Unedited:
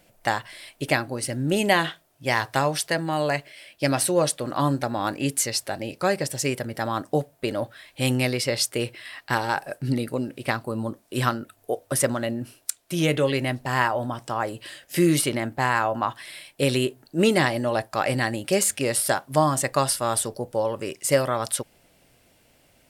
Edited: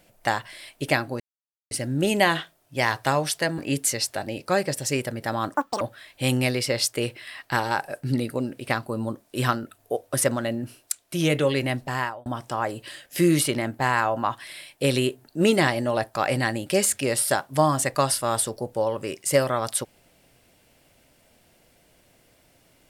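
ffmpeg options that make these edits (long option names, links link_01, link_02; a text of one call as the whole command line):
ffmpeg -i in.wav -filter_complex "[0:a]asplit=6[link_01][link_02][link_03][link_04][link_05][link_06];[link_01]atrim=end=1.2,asetpts=PTS-STARTPTS,afade=type=out:start_time=1.196:duration=0.004:curve=hsin,apad=pad_dur=0.51[link_07];[link_02]atrim=start=1.2:end=3.072,asetpts=PTS-STARTPTS,afade=type=in:duration=0.004:curve=hsin[link_08];[link_03]atrim=start=5.108:end=7.074[link_09];[link_04]atrim=start=7.07:end=7.59,asetpts=PTS-STARTPTS,asetrate=85554,aresample=44100[link_10];[link_05]atrim=start=7.586:end=14.04,asetpts=PTS-STARTPTS,afade=type=out:start_time=6.024:duration=0.43[link_11];[link_06]atrim=start=14.04,asetpts=PTS-STARTPTS,afade=type=in:duration=0.004:curve=hsin[link_12];[link_07][link_08]concat=n=2:v=0:a=1[link_13];[link_13][link_09]acrossfade=duration=0.004:curve1=hsin:curve2=hsin[link_14];[link_14][link_10]acrossfade=duration=0.004:curve1=hsin:curve2=hsin[link_15];[link_11][link_12]concat=n=2:v=0:a=1[link_16];[link_15][link_16]acrossfade=duration=0.004:curve1=hsin:curve2=hsin" out.wav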